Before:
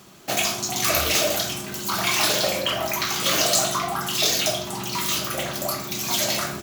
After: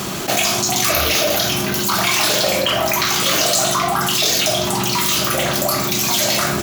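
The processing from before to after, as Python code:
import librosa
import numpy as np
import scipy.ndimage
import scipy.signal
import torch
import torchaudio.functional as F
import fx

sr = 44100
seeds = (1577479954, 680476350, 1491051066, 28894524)

y = fx.peak_eq(x, sr, hz=8100.0, db=-14.0, octaves=0.22, at=(0.92, 1.84))
y = fx.env_flatten(y, sr, amount_pct=70)
y = F.gain(torch.from_numpy(y), 2.0).numpy()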